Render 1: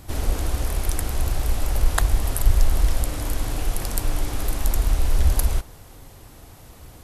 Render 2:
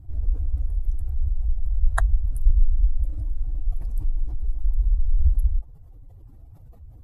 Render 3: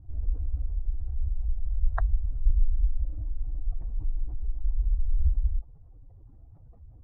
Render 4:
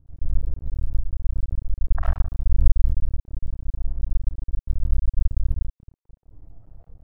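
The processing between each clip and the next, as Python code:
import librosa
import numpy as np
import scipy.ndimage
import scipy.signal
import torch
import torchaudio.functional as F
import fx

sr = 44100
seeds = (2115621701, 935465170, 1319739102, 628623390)

y1 = fx.spec_expand(x, sr, power=2.2)
y2 = scipy.signal.sosfilt(scipy.signal.butter(2, 1300.0, 'lowpass', fs=sr, output='sos'), y1)
y2 = y2 * librosa.db_to_amplitude(-5.0)
y3 = fx.rev_freeverb(y2, sr, rt60_s=0.85, hf_ratio=0.3, predelay_ms=30, drr_db=-8.5)
y3 = np.maximum(y3, 0.0)
y3 = y3 * librosa.db_to_amplitude(-4.0)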